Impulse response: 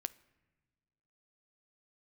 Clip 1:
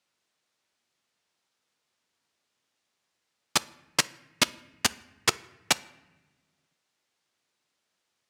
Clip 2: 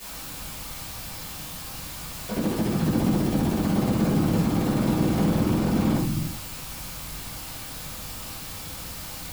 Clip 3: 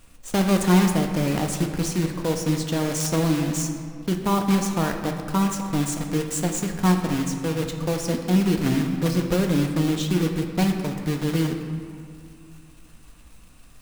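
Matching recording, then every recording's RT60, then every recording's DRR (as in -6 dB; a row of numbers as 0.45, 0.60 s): 1; not exponential, 0.70 s, 2.3 s; 14.5, -12.5, 4.0 dB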